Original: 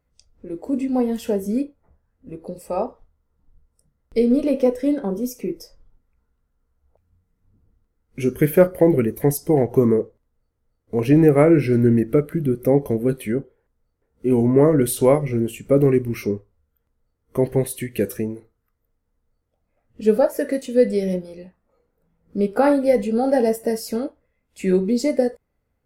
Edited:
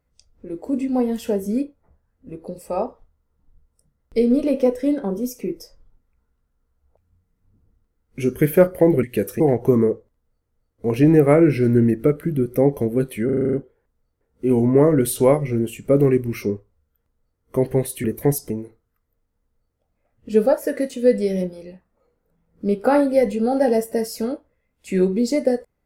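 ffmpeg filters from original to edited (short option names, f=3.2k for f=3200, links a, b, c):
-filter_complex "[0:a]asplit=12[a][b][c][d][e][f][g][h][i][j][k][l];[a]atrim=end=9.032[m];[b]atrim=start=17.848:end=18.222[n];[c]atrim=start=9.488:end=13.382[o];[d]atrim=start=13.338:end=13.382[p];[e]atrim=start=13.338:end=13.382[q];[f]atrim=start=13.338:end=13.382[r];[g]atrim=start=13.338:end=13.382[s];[h]atrim=start=13.338:end=13.382[t];[i]atrim=start=13.338:end=13.382[u];[j]atrim=start=13.338:end=17.852[v];[k]atrim=start=9.028:end=9.492[w];[l]atrim=start=18.218[x];[m][n]acrossfade=d=0.004:c1=hsin:c2=hsin[y];[y][o]acrossfade=d=0.004:c1=hsin:c2=hsin[z];[z][p]acrossfade=d=0.004:c1=hsin:c2=hsin[aa];[aa][q]acrossfade=d=0.004:c1=hsin:c2=hsin[ab];[ab][r]acrossfade=d=0.004:c1=hsin:c2=hsin[ac];[ac][s]acrossfade=d=0.004:c1=hsin:c2=hsin[ad];[ad][t]acrossfade=d=0.004:c1=hsin:c2=hsin[ae];[ae][u]acrossfade=d=0.004:c1=hsin:c2=hsin[af];[af][v]acrossfade=d=0.004:c1=hsin:c2=hsin[ag];[ag][w]acrossfade=d=0.004:c1=hsin:c2=hsin[ah];[ah][x]acrossfade=d=0.004:c1=hsin:c2=hsin"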